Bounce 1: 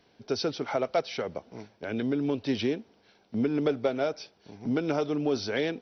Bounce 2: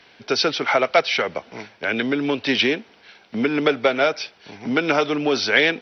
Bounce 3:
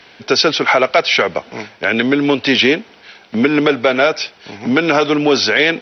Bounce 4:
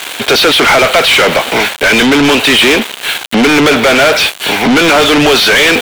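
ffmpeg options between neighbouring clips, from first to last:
ffmpeg -i in.wav -filter_complex "[0:a]equalizer=frequency=2200:width_type=o:width=2.6:gain=15,acrossover=split=130|670[link_01][link_02][link_03];[link_01]acompressor=threshold=-56dB:ratio=6[link_04];[link_04][link_02][link_03]amix=inputs=3:normalize=0,volume=4dB" out.wav
ffmpeg -i in.wav -af "alimiter=level_in=9dB:limit=-1dB:release=50:level=0:latency=1,volume=-1dB" out.wav
ffmpeg -i in.wav -filter_complex "[0:a]aeval=exprs='val(0)*gte(abs(val(0)),0.0112)':channel_layout=same,aexciter=amount=1.1:drive=5.8:freq=2800,asplit=2[link_01][link_02];[link_02]highpass=frequency=720:poles=1,volume=35dB,asoftclip=type=tanh:threshold=0dB[link_03];[link_01][link_03]amix=inputs=2:normalize=0,lowpass=frequency=4600:poles=1,volume=-6dB,volume=-1dB" out.wav

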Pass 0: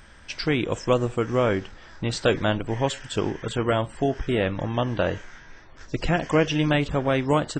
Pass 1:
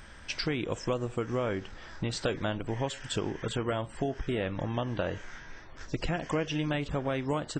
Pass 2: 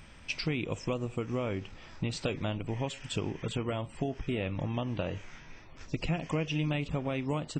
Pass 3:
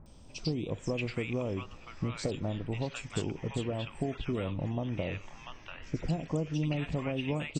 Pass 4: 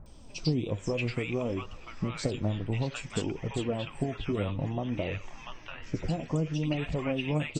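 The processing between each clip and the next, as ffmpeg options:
ffmpeg -i in.wav -af "acompressor=threshold=-30dB:ratio=3" out.wav
ffmpeg -i in.wav -af "equalizer=frequency=100:width_type=o:width=0.33:gain=6,equalizer=frequency=160:width_type=o:width=0.33:gain=7,equalizer=frequency=250:width_type=o:width=0.33:gain=4,equalizer=frequency=1600:width_type=o:width=0.33:gain=-8,equalizer=frequency=2500:width_type=o:width=0.33:gain=8,volume=-3.5dB" out.wav
ffmpeg -i in.wav -filter_complex "[0:a]acrossover=split=1000|3500[link_01][link_02][link_03];[link_03]adelay=60[link_04];[link_02]adelay=690[link_05];[link_01][link_05][link_04]amix=inputs=3:normalize=0" out.wav
ffmpeg -i in.wav -af "flanger=delay=1.3:depth=9.7:regen=48:speed=0.58:shape=triangular,volume=6.5dB" out.wav

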